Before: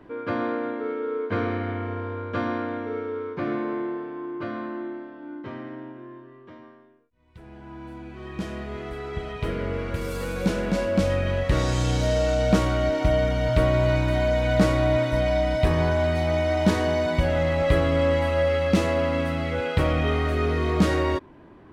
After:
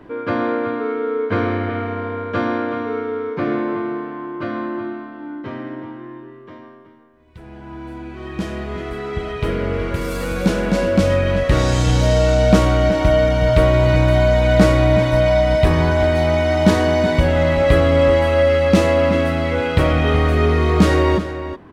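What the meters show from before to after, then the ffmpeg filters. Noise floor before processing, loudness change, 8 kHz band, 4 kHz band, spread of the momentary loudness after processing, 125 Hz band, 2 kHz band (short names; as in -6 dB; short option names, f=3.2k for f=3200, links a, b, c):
-49 dBFS, +7.5 dB, +6.5 dB, +6.5 dB, 15 LU, +7.5 dB, +7.0 dB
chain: -filter_complex "[0:a]asplit=2[a][b];[b]adelay=373.2,volume=-10dB,highshelf=f=4k:g=-8.4[c];[a][c]amix=inputs=2:normalize=0,volume=6.5dB"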